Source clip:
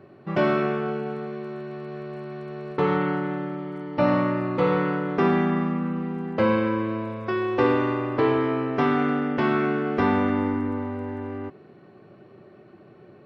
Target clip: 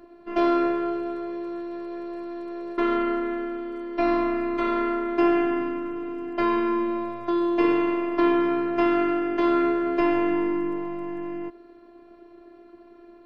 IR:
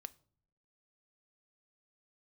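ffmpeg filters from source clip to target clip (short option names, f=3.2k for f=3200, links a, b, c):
-af "afftfilt=real='hypot(re,im)*cos(PI*b)':imag='0':win_size=512:overlap=0.75,volume=3.5dB"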